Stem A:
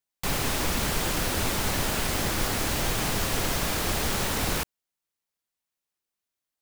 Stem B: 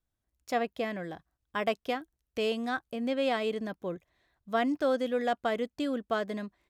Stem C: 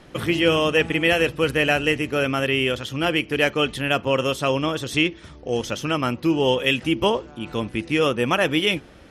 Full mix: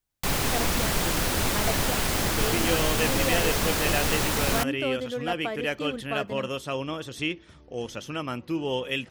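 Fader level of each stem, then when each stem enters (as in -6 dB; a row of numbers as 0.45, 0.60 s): +1.5, -2.5, -9.0 dB; 0.00, 0.00, 2.25 s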